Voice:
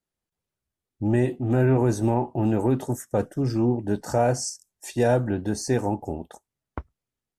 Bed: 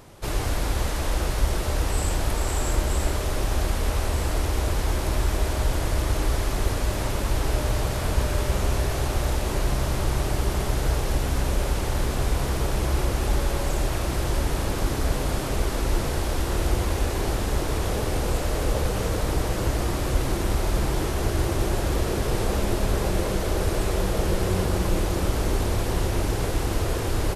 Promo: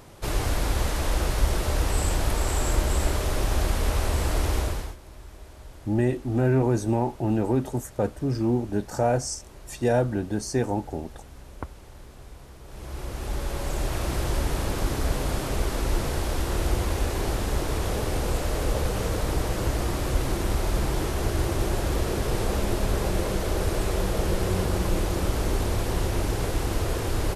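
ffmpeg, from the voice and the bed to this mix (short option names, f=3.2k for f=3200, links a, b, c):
-filter_complex "[0:a]adelay=4850,volume=-1.5dB[a];[1:a]volume=19.5dB,afade=t=out:st=4.55:d=0.41:silence=0.0891251,afade=t=in:st=12.64:d=1.44:silence=0.105925[b];[a][b]amix=inputs=2:normalize=0"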